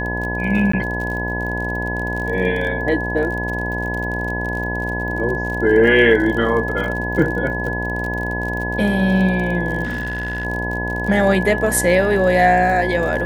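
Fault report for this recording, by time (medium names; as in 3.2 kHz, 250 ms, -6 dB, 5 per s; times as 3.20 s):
buzz 60 Hz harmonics 17 -25 dBFS
crackle 41 per s -26 dBFS
whine 1.7 kHz -24 dBFS
0.72–0.73 s: dropout 14 ms
9.83–10.45 s: clipped -20 dBFS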